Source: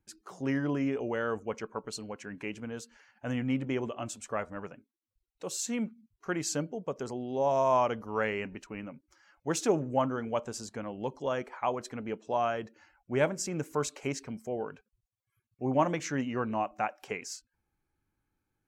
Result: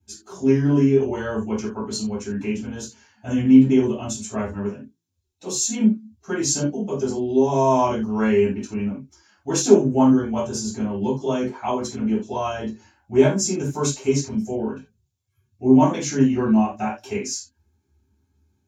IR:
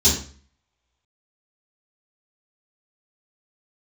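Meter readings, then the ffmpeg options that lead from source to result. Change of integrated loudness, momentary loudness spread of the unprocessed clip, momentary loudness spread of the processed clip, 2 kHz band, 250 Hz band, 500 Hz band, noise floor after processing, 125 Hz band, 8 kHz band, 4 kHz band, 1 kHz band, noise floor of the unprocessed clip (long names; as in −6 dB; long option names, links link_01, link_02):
+12.0 dB, 13 LU, 14 LU, +3.5 dB, +15.5 dB, +10.0 dB, −71 dBFS, +13.0 dB, +12.5 dB, +10.5 dB, +6.0 dB, −85 dBFS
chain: -filter_complex "[0:a]bandreject=frequency=55.12:width_type=h:width=4,bandreject=frequency=110.24:width_type=h:width=4,bandreject=frequency=165.36:width_type=h:width=4[link_01];[1:a]atrim=start_sample=2205,atrim=end_sample=4410[link_02];[link_01][link_02]afir=irnorm=-1:irlink=0,volume=-10dB"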